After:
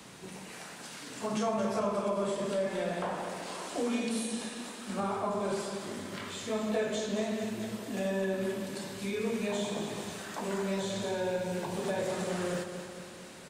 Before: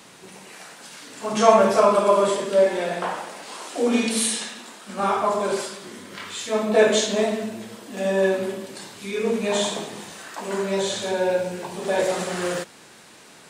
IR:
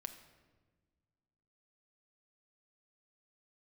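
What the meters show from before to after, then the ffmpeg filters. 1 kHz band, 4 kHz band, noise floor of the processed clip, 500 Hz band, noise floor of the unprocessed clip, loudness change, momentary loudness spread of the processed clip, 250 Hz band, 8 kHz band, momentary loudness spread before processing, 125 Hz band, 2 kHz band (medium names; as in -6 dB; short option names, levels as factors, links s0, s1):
-12.5 dB, -11.0 dB, -47 dBFS, -12.0 dB, -48 dBFS, -12.0 dB, 9 LU, -6.5 dB, -12.0 dB, 19 LU, -4.0 dB, -10.5 dB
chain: -filter_complex "[0:a]lowshelf=f=200:g=10,acrossover=split=170|890[s0][s1][s2];[s0]acompressor=threshold=0.0112:ratio=4[s3];[s1]acompressor=threshold=0.0316:ratio=4[s4];[s2]acompressor=threshold=0.0141:ratio=4[s5];[s3][s4][s5]amix=inputs=3:normalize=0,asplit=2[s6][s7];[s7]aecho=0:1:224|448|672|896|1120|1344|1568:0.355|0.206|0.119|0.0692|0.0402|0.0233|0.0135[s8];[s6][s8]amix=inputs=2:normalize=0,volume=0.631"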